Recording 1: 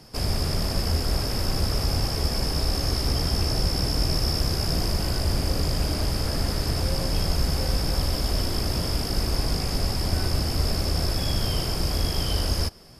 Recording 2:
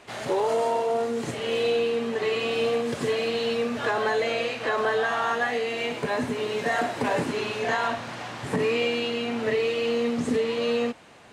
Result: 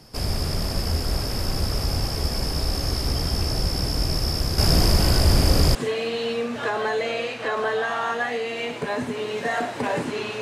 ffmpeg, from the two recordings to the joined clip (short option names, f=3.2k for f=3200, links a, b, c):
-filter_complex "[0:a]asettb=1/sr,asplit=3[a][b][c];[a]atrim=end=4.584[d];[b]atrim=start=4.58:end=5.75,asetpts=PTS-STARTPTS,afade=t=in:d=0.004:c=qsin,afade=t=out:st=1.166:d=0.004:c=qsin,acontrast=86[e];[c]atrim=start=5.746[f];[d][e]acrossfade=d=0.004:c1=hsin:c2=qsin[g];[g][f]acrossfade=d=0.004:c1=qsin:c2=hsin,apad=whole_dur=10.41,atrim=end=10.41,atrim=end=5.752[h];[1:a]atrim=start=2.958:end=7.62[i];[h][i]acrossfade=d=0.004:c1=hsin:c2=hsin"